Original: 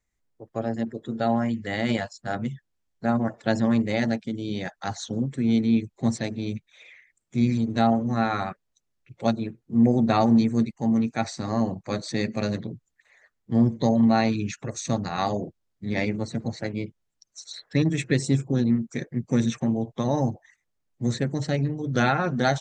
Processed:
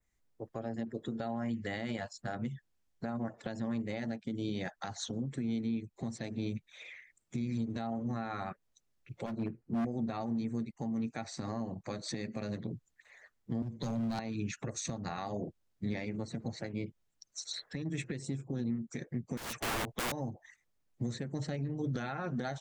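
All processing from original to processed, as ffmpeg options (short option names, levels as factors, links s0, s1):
-filter_complex "[0:a]asettb=1/sr,asplit=3[s0][s1][s2];[s0]atrim=end=9.264[s3];[s1]atrim=start=9.26:end=9.85,asetpts=PTS-STARTPTS,afade=t=in:d=0.004:c=qsin,afade=t=out:st=0.586:d=0.004:c=qsin,asuperstop=centerf=3500:order=4:qfactor=4.3,highshelf=f=4000:g=-10,volume=16.8,asoftclip=hard,volume=0.0596[s4];[s2]atrim=start=9.846[s5];[s3][s4]acrossfade=d=0.004:c1=hsin:c2=qsin[s6];[s6][s5]acrossfade=d=0.004:c1=qsin:c2=hsin,asettb=1/sr,asplit=3[s7][s8][s9];[s7]atrim=end=13.624[s10];[s8]atrim=start=13.62:end=14.19,asetpts=PTS-STARTPTS,afade=t=in:d=0.004:c=qsin,afade=t=out:st=0.566:d=0.004:c=qsin,asubboost=boost=5.5:cutoff=160,asoftclip=type=hard:threshold=0.133,acrossover=split=150|3000[s11][s12][s13];[s12]acompressor=threshold=0.00891:ratio=1.5:attack=3.2:release=140:knee=2.83:detection=peak[s14];[s11][s14][s13]amix=inputs=3:normalize=0[s15];[s9]atrim=start=14.186[s16];[s10][s15]acrossfade=d=0.004:c1=hsin:c2=qsin[s17];[s17][s16]acrossfade=d=0.004:c1=qsin:c2=hsin,asettb=1/sr,asplit=3[s18][s19][s20];[s18]atrim=end=19.374[s21];[s19]atrim=start=19.37:end=20.12,asetpts=PTS-STARTPTS,afade=t=in:d=0.004:c=qsin,afade=t=out:st=0.746:d=0.004:c=qsin,acrossover=split=7500[s22][s23];[s23]acompressor=threshold=0.00178:ratio=4:attack=1:release=60[s24];[s22][s24]amix=inputs=2:normalize=0,asubboost=boost=2.5:cutoff=100,aeval=exprs='(mod(22.4*val(0)+1,2)-1)/22.4':c=same[s25];[s20]atrim=start=20.116[s26];[s21][s25]acrossfade=d=0.004:c1=hsin:c2=qsin[s27];[s27][s26]acrossfade=d=0.004:c1=qsin:c2=hsin,adynamicequalizer=threshold=0.00398:dfrequency=5100:dqfactor=0.84:tfrequency=5100:tqfactor=0.84:attack=5:release=100:ratio=0.375:range=2:mode=cutabove:tftype=bell,acompressor=threshold=0.0282:ratio=6,alimiter=level_in=1.26:limit=0.0631:level=0:latency=1:release=191,volume=0.794"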